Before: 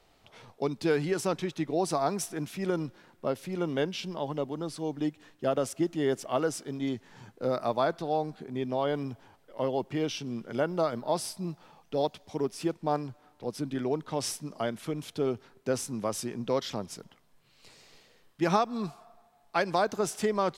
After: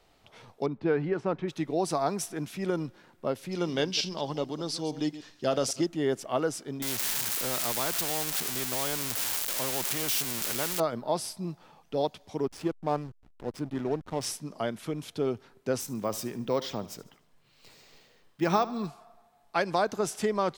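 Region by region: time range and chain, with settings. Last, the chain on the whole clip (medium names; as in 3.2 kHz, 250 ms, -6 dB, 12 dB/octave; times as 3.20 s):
0.66–1.48 s: low-pass 1.9 kHz + tape noise reduction on one side only decoder only
3.51–5.86 s: chunks repeated in reverse 100 ms, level -14 dB + peaking EQ 5 kHz +13 dB 1.2 oct
6.82–10.80 s: zero-crossing glitches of -22.5 dBFS + spectrum-flattening compressor 2:1
12.47–14.26 s: upward compressor, threshold -36 dBFS + hysteresis with a dead band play -35 dBFS
15.80–18.88 s: feedback delay 74 ms, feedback 45%, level -17.5 dB + careless resampling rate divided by 2×, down filtered, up hold
whole clip: none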